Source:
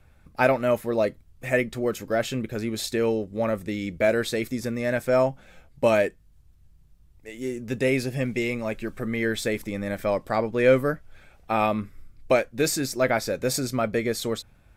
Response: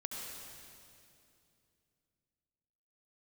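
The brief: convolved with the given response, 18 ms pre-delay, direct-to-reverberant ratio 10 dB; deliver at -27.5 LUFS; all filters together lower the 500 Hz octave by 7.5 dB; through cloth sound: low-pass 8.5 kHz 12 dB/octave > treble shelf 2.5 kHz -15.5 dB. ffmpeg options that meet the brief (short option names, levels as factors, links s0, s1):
-filter_complex "[0:a]equalizer=f=500:t=o:g=-8.5,asplit=2[s0][s1];[1:a]atrim=start_sample=2205,adelay=18[s2];[s1][s2]afir=irnorm=-1:irlink=0,volume=0.316[s3];[s0][s3]amix=inputs=2:normalize=0,lowpass=8500,highshelf=f=2500:g=-15.5,volume=1.41"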